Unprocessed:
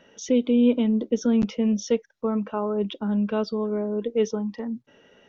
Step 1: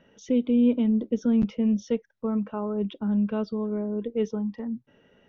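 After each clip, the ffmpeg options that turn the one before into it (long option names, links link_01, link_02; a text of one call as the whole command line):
ffmpeg -i in.wav -af "bass=frequency=250:gain=8,treble=frequency=4000:gain=-8,volume=-5.5dB" out.wav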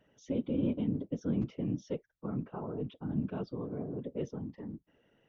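ffmpeg -i in.wav -af "afftfilt=real='hypot(re,im)*cos(2*PI*random(0))':imag='hypot(re,im)*sin(2*PI*random(1))':win_size=512:overlap=0.75,volume=-4dB" out.wav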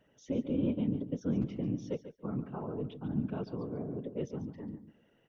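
ffmpeg -i in.wav -af "aecho=1:1:142|284:0.251|0.0377" out.wav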